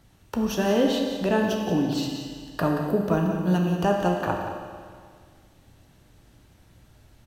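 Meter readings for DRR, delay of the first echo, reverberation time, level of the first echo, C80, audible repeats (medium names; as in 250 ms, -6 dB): 0.5 dB, 178 ms, 1.9 s, -10.0 dB, 3.5 dB, 1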